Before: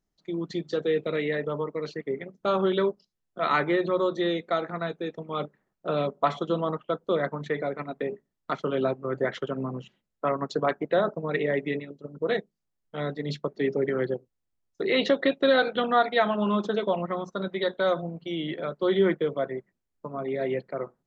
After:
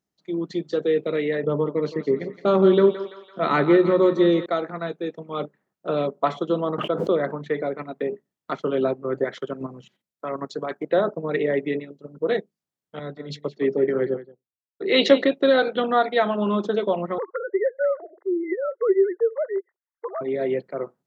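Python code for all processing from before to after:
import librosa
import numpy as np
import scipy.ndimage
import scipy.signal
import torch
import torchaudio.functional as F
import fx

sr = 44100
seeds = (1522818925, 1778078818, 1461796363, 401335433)

y = fx.chain(x, sr, fx.low_shelf(hz=320.0, db=10.0),
    fx.echo_thinned(ms=168, feedback_pct=61, hz=560.0, wet_db=-10.0), at=(1.43, 4.46))
y = fx.chain(y, sr, fx.lowpass(hz=4000.0, slope=6),
    fx.pre_swell(db_per_s=37.0), at=(6.78, 7.49))
y = fx.chain(y, sr, fx.high_shelf(hz=2600.0, db=7.0),
    fx.level_steps(step_db=10),
    fx.notch(hz=2800.0, q=13.0), at=(9.24, 10.86))
y = fx.chain(y, sr, fx.echo_single(ms=177, db=-12.5),
    fx.band_widen(depth_pct=100), at=(12.99, 15.24))
y = fx.chain(y, sr, fx.sine_speech(),
    fx.brickwall_bandpass(low_hz=330.0, high_hz=2100.0),
    fx.band_squash(depth_pct=70), at=(17.18, 20.21))
y = fx.dynamic_eq(y, sr, hz=370.0, q=0.86, threshold_db=-35.0, ratio=4.0, max_db=5)
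y = scipy.signal.sosfilt(scipy.signal.butter(2, 110.0, 'highpass', fs=sr, output='sos'), y)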